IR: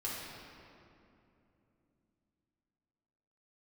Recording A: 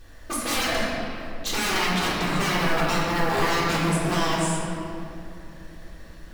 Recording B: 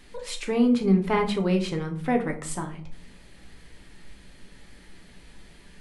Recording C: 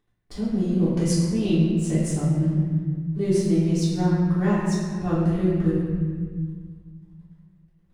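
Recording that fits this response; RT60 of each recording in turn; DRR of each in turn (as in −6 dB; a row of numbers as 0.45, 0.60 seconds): A; 2.9, 0.50, 1.7 seconds; −7.5, 2.5, −11.0 decibels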